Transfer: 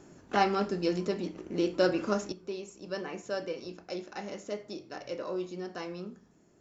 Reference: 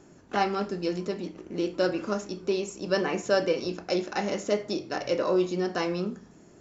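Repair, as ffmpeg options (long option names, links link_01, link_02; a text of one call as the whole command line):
ffmpeg -i in.wav -af "asetnsamples=nb_out_samples=441:pad=0,asendcmd='2.32 volume volume 10.5dB',volume=0dB" out.wav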